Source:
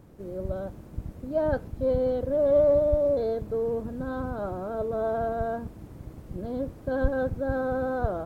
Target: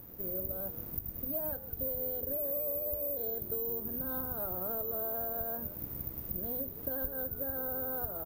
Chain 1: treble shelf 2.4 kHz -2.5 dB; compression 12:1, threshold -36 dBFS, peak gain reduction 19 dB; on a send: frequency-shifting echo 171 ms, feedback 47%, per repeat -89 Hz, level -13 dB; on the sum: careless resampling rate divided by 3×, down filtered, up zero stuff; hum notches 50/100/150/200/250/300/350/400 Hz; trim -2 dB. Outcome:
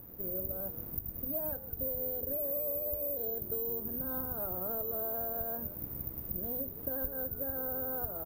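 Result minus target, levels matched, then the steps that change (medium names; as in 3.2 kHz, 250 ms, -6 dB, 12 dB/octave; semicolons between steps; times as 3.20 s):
4 kHz band -5.0 dB
change: treble shelf 2.4 kHz +5 dB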